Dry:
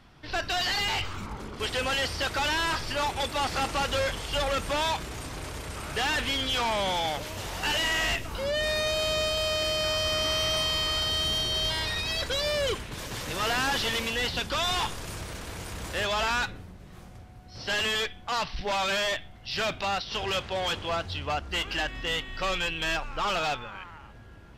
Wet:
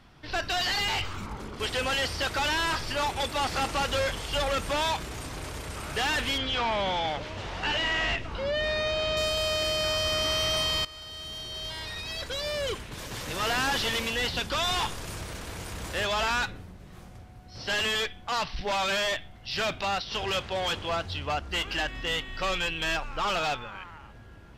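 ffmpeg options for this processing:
-filter_complex "[0:a]asettb=1/sr,asplit=3[a][b][c];[a]atrim=end=6.384[d];[b]atrim=start=6.38:end=9.17,asetpts=PTS-STARTPTS,afade=t=in:d=0.004:c=qsin,afade=t=out:st=2.786:d=0.004:c=qsin,lowpass=3.9k[e];[c]atrim=start=9.166[f];[d][e]acrossfade=d=0.004:c1=hsin:c2=qsin[g];[g][f]acrossfade=d=0.004:c1=qsin:c2=hsin,asplit=2[h][i];[h]atrim=end=10.85,asetpts=PTS-STARTPTS,afade=t=out:st=10.846:d=0.004:c=hsin:silence=0.125893[j];[i]atrim=start=10.85,asetpts=PTS-STARTPTS,afade=t=in:d=2.74:silence=0.125893[k];[j][k]concat=n=2:v=0:a=1"

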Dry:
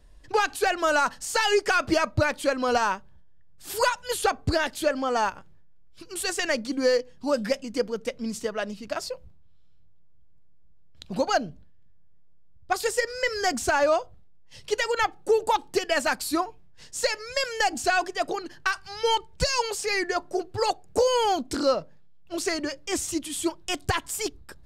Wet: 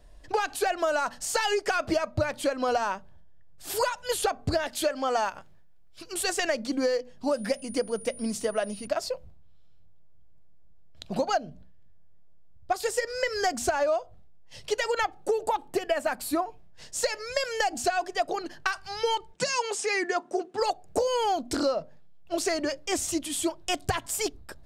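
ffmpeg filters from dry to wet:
-filter_complex "[0:a]asettb=1/sr,asplit=3[a][b][c];[a]atrim=end=4.684[d];[b]atrim=start=4.68:end=6.13,asetpts=PTS-STARTPTS,afade=t=in:d=0.004:c=qsin,afade=t=out:st=1.446:d=0.004:c=qsin,tiltshelf=f=970:g=-3[e];[c]atrim=start=6.126[f];[d][e]acrossfade=d=0.004:c1=hsin:c2=qsin[g];[g][f]acrossfade=d=0.004:c1=qsin:c2=hsin,asettb=1/sr,asplit=3[h][i][j];[h]atrim=end=7.314[k];[i]atrim=start=7.31:end=8.87,asetpts=PTS-STARTPTS,afade=t=in:d=0.004:c=qsin,afade=t=out:st=1.556:d=0.004:c=qsin,aeval=exprs='val(0)+0.00631*sin(2*PI*9600*n/s)':c=same[l];[j]atrim=start=8.866[m];[k][l]acrossfade=d=0.004:c1=hsin:c2=qsin[n];[n][m]acrossfade=d=0.004:c1=qsin:c2=hsin,asettb=1/sr,asplit=3[o][p][q];[o]atrim=end=15.494[r];[p]atrim=start=15.49:end=16.46,asetpts=PTS-STARTPTS,afade=t=in:d=0.004:c=qsin,afade=t=out:st=0.966:d=0.004:c=qsin,equalizer=f=5.3k:t=o:w=1.3:g=-8.5[s];[q]atrim=start=16.456[t];[r][s]acrossfade=d=0.004:c1=hsin:c2=qsin[u];[u][t]acrossfade=d=0.004:c1=qsin:c2=hsin,asplit=3[v][w][x];[v]afade=t=out:st=19.32:d=0.02[y];[w]highpass=f=190:w=0.5412,highpass=f=190:w=1.3066,equalizer=f=230:t=q:w=4:g=5,equalizer=f=620:t=q:w=4:g=-9,equalizer=f=4.5k:t=q:w=4:g=-6,lowpass=f=9.6k:w=0.5412,lowpass=f=9.6k:w=1.3066,afade=t=in:st=19.32:d=0.02,afade=t=out:st=20.6:d=0.02[z];[x]afade=t=in:st=20.6:d=0.02[aa];[y][z][aa]amix=inputs=3:normalize=0,equalizer=f=660:w=3.1:g=7.5,bandreject=f=60:t=h:w=6,bandreject=f=120:t=h:w=6,bandreject=f=180:t=h:w=6,bandreject=f=240:t=h:w=6,acompressor=threshold=-24dB:ratio=6,volume=1dB"

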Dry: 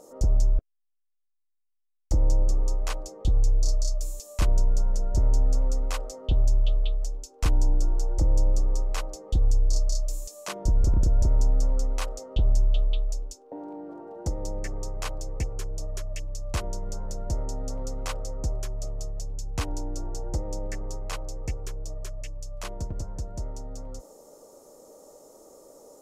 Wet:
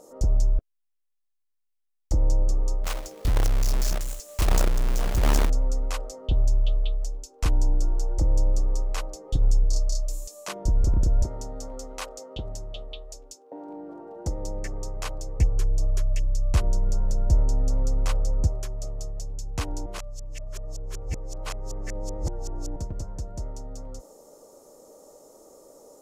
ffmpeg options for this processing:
-filter_complex "[0:a]asettb=1/sr,asplit=3[a][b][c];[a]atrim=end=2.844[d];[b]atrim=start=2.84:end=5.5,asetpts=PTS-STARTPTS,afade=t=in:d=0.004:c=qsin,afade=t=out:st=2.656:d=0.004:c=qsin,acrusher=bits=2:mode=log:mix=0:aa=0.000001[e];[c]atrim=start=5.496[f];[d][e]acrossfade=d=0.004:c1=hsin:c2=qsin[g];[g][f]acrossfade=d=0.004:c1=qsin:c2=hsin,asettb=1/sr,asplit=3[h][i][j];[h]atrim=end=9.244[k];[i]atrim=start=9.24:end=9.64,asetpts=PTS-STARTPTS,afade=t=in:d=0.004:c=qsin,afade=t=out:st=0.396:d=0.004:c=qsin,aecho=1:1:7.3:0.61,atrim=end_sample=17640[l];[j]atrim=start=9.636[m];[k][l]acrossfade=d=0.004:c1=hsin:c2=qsin[n];[n][m]acrossfade=d=0.004:c1=qsin:c2=hsin,asettb=1/sr,asplit=3[o][p][q];[o]atrim=end=11.244[r];[p]atrim=start=11.24:end=13.69,asetpts=PTS-STARTPTS,afade=t=in:d=0.004:c=qsin,afade=t=out:st=2.446:d=0.004:c=qsin,highpass=f=230:p=1[s];[q]atrim=start=13.686[t];[r][s]acrossfade=d=0.004:c1=hsin:c2=qsin[u];[u][t]acrossfade=d=0.004:c1=qsin:c2=hsin,asettb=1/sr,asplit=3[v][w][x];[v]atrim=end=15.394[y];[w]atrim=start=15.39:end=18.47,asetpts=PTS-STARTPTS,afade=t=in:d=0.004:c=qsin,afade=t=out:st=3.076:d=0.004:c=qsin,lowshelf=f=160:g=10.5[z];[x]atrim=start=18.466[aa];[y][z]acrossfade=d=0.004:c1=hsin:c2=qsin[ab];[ab][aa]acrossfade=d=0.004:c1=qsin:c2=hsin,asplit=3[ac][ad][ae];[ac]atrim=end=19.862[af];[ad]atrim=start=19.858:end=22.762,asetpts=PTS-STARTPTS,areverse[ag];[ae]atrim=start=22.758[ah];[af][ag]acrossfade=d=0.004:c1=hsin:c2=hsin[ai];[ai][ah]acrossfade=d=0.004:c1=hsin:c2=hsin"

